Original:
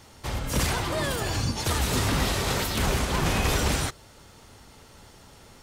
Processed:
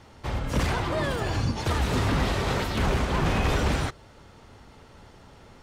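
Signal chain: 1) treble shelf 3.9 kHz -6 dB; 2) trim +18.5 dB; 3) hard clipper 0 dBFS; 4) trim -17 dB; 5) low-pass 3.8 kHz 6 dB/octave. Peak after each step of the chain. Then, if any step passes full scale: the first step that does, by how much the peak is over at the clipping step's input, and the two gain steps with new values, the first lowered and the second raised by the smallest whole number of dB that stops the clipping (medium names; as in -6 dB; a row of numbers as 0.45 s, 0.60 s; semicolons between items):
-13.0 dBFS, +5.5 dBFS, 0.0 dBFS, -17.0 dBFS, -17.0 dBFS; step 2, 5.5 dB; step 2 +12.5 dB, step 4 -11 dB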